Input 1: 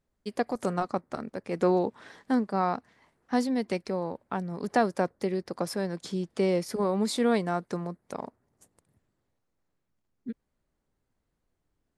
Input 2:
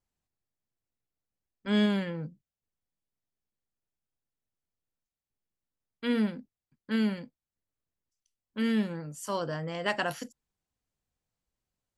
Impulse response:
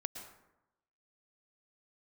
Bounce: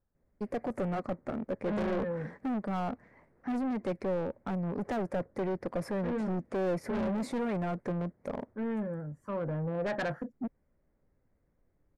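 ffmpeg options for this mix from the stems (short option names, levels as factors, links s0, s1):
-filter_complex "[0:a]highshelf=f=2600:t=q:w=3:g=-7,asoftclip=type=hard:threshold=0.0422,adelay=150,volume=1.06[s0];[1:a]firequalizer=gain_entry='entry(830,0);entry(1700,6);entry(2500,-25)':delay=0.05:min_phase=1,aphaser=in_gain=1:out_gain=1:delay=4.2:decay=0.44:speed=0.2:type=sinusoidal,volume=0.631[s1];[s0][s1]amix=inputs=2:normalize=0,tiltshelf=f=760:g=6,asoftclip=type=tanh:threshold=0.0316,equalizer=f=550:t=o:w=0.4:g=6"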